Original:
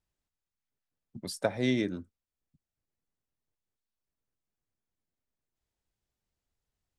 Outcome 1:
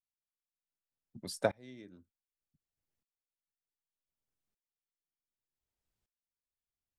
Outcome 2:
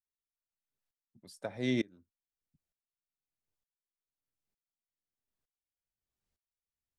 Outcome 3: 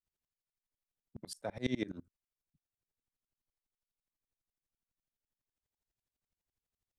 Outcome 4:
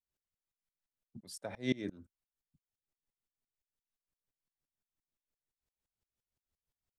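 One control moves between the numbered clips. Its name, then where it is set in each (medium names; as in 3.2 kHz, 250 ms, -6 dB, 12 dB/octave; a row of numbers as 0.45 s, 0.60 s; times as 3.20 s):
sawtooth tremolo in dB, rate: 0.66 Hz, 1.1 Hz, 12 Hz, 5.8 Hz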